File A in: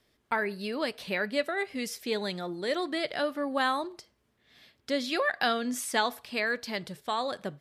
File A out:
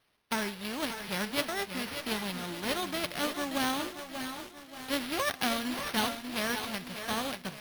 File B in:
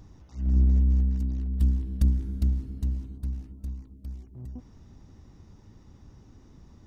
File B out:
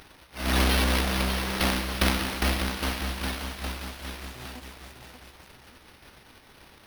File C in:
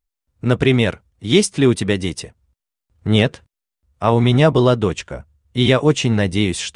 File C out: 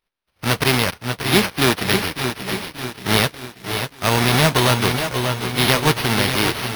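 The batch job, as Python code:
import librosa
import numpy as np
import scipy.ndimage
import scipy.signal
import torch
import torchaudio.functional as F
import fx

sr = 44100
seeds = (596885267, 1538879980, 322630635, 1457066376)

p1 = fx.envelope_flatten(x, sr, power=0.3)
p2 = p1 + fx.echo_feedback(p1, sr, ms=582, feedback_pct=48, wet_db=-10, dry=0)
p3 = np.repeat(p2[::6], 6)[:len(p2)]
p4 = fx.echo_crushed(p3, sr, ms=598, feedback_pct=55, bits=6, wet_db=-9.5)
y = p4 * librosa.db_to_amplitude(-3.0)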